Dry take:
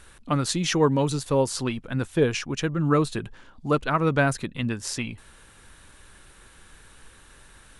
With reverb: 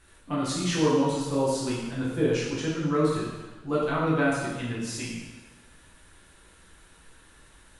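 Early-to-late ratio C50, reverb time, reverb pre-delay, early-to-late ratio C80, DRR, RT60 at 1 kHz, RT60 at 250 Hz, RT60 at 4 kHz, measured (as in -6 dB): 0.0 dB, 1.2 s, 4 ms, 3.0 dB, -7.5 dB, 1.2 s, 1.2 s, 1.1 s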